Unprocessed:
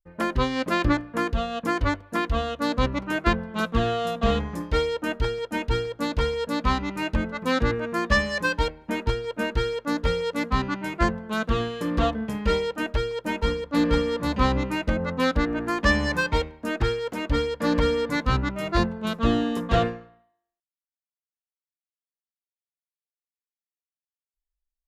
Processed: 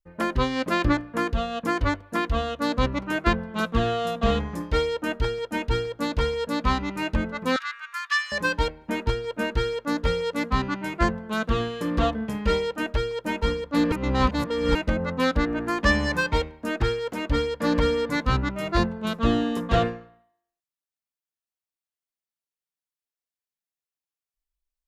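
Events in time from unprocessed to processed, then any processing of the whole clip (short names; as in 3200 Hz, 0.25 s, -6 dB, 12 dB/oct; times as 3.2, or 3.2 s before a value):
7.56–8.32 elliptic high-pass 1200 Hz, stop band 70 dB
13.92–14.75 reverse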